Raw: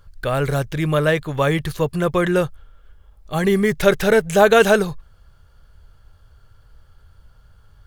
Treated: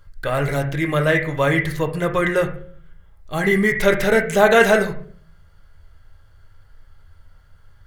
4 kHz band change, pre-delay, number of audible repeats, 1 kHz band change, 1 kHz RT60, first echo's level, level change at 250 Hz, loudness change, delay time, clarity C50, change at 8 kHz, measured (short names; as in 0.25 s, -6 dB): -1.5 dB, 3 ms, none, -0.5 dB, 0.40 s, none, -1.0 dB, 0.0 dB, none, 8.5 dB, -1.5 dB